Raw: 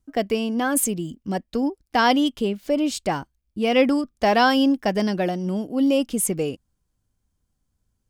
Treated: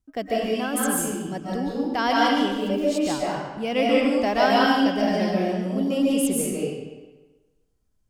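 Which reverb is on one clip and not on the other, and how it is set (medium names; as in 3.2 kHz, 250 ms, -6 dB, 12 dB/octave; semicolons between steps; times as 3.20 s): algorithmic reverb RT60 1.2 s, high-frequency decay 0.85×, pre-delay 105 ms, DRR -5 dB; trim -6.5 dB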